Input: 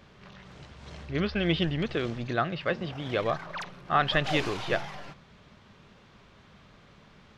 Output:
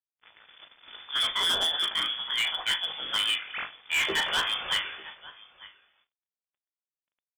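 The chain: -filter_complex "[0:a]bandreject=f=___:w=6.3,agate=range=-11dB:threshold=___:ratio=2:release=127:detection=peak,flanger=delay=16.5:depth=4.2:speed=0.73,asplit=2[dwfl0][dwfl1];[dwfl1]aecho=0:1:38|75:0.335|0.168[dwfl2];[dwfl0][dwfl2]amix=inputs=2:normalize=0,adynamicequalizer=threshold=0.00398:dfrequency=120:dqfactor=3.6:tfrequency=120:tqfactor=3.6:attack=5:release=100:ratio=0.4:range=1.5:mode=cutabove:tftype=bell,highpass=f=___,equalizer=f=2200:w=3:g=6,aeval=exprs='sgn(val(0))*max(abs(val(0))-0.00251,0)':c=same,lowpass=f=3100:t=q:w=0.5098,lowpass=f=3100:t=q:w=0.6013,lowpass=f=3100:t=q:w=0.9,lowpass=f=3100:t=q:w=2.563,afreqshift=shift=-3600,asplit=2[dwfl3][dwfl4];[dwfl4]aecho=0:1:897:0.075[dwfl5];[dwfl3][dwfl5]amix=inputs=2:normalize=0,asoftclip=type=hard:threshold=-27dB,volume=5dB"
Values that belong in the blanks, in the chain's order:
760, -48dB, 59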